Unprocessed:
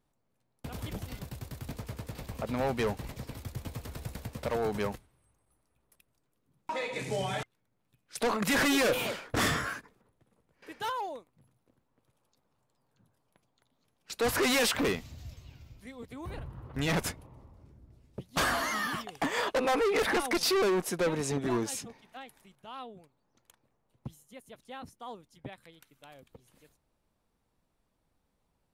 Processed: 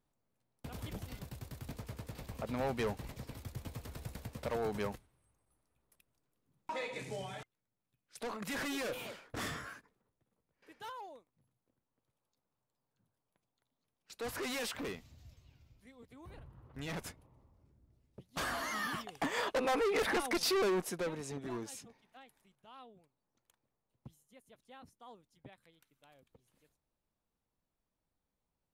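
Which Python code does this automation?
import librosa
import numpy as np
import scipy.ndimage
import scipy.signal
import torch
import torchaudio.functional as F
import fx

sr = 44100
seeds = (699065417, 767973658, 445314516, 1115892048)

y = fx.gain(x, sr, db=fx.line((6.84, -5.0), (7.35, -12.0), (18.19, -12.0), (18.86, -4.5), (20.79, -4.5), (21.21, -11.0)))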